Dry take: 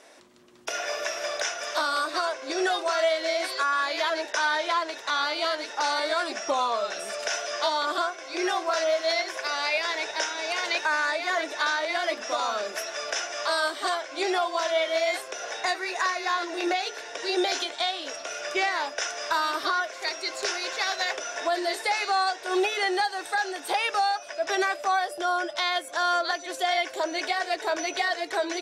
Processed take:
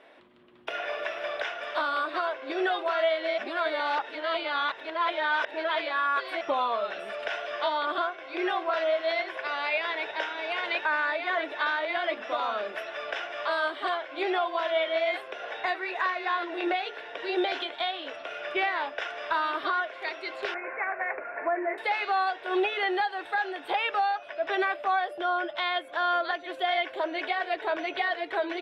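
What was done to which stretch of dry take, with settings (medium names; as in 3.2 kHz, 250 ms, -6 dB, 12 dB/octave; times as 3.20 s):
3.38–6.41 s: reverse
20.54–21.78 s: steep low-pass 2.4 kHz 96 dB/octave
whole clip: FFT filter 3.3 kHz 0 dB, 6.2 kHz -27 dB, 11 kHz -19 dB; trim -1.5 dB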